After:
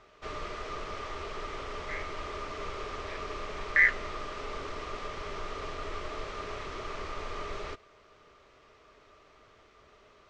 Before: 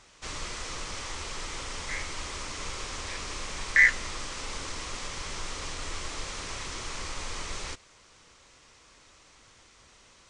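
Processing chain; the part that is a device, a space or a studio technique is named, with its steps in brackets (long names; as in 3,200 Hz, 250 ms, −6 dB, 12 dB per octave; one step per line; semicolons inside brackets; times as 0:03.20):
inside a cardboard box (low-pass filter 3,100 Hz 12 dB per octave; hollow resonant body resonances 420/620/1,200 Hz, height 13 dB, ringing for 50 ms)
level −3 dB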